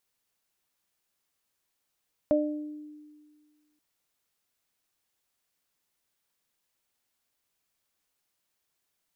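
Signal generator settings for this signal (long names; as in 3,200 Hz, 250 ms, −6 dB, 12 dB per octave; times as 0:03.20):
harmonic partials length 1.48 s, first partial 300 Hz, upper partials 5 dB, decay 1.78 s, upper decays 0.56 s, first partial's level −23.5 dB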